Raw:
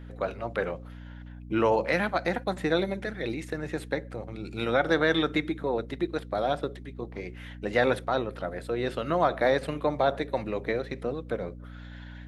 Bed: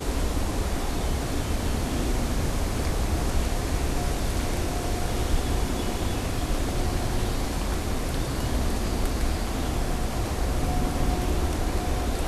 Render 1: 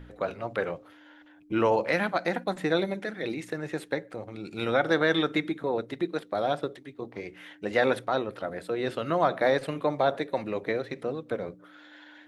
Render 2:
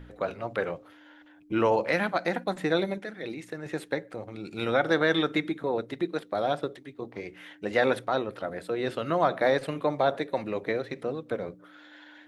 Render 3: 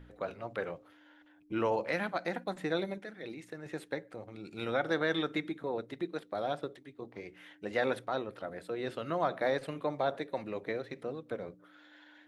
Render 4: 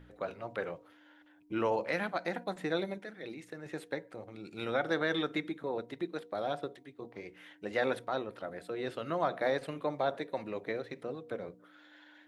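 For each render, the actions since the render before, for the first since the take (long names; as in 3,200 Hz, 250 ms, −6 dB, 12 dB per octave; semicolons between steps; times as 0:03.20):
hum removal 60 Hz, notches 4
0:02.98–0:03.66: clip gain −4 dB
level −7 dB
low-shelf EQ 80 Hz −5 dB; hum removal 237.9 Hz, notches 4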